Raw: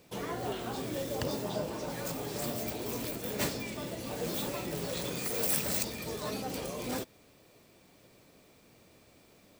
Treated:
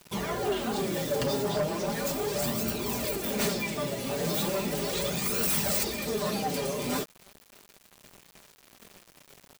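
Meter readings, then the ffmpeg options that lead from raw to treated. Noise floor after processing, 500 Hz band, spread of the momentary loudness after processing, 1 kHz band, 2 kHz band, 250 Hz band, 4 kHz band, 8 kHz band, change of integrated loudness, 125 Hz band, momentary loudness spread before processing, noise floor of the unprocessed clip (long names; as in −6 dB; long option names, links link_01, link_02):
−60 dBFS, +6.5 dB, 5 LU, +6.0 dB, +6.0 dB, +5.5 dB, +6.0 dB, +5.0 dB, +5.5 dB, +5.0 dB, 8 LU, −61 dBFS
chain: -af "aecho=1:1:5:0.51,flanger=delay=0.7:depth=6.6:regen=28:speed=0.37:shape=sinusoidal,aeval=exprs='0.133*sin(PI/2*3.55*val(0)/0.133)':channel_layout=same,acrusher=bits=6:mix=0:aa=0.000001,volume=-5dB"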